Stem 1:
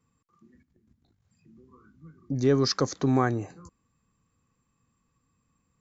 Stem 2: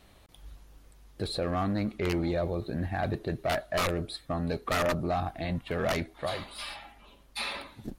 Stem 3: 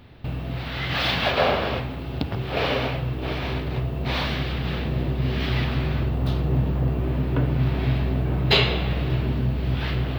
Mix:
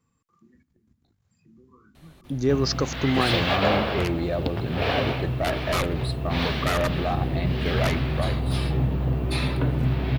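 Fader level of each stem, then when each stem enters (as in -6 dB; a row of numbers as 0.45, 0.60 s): +0.5, +2.5, -1.5 dB; 0.00, 1.95, 2.25 s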